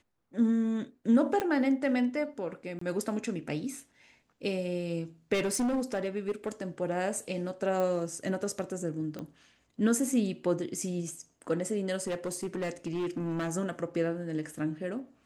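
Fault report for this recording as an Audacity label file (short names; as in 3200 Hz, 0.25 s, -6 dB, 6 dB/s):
1.400000	1.400000	pop -16 dBFS
2.790000	2.810000	gap 24 ms
5.330000	6.490000	clipped -25.5 dBFS
7.800000	7.800000	pop -20 dBFS
9.190000	9.190000	pop -26 dBFS
12.070000	13.530000	clipped -28.5 dBFS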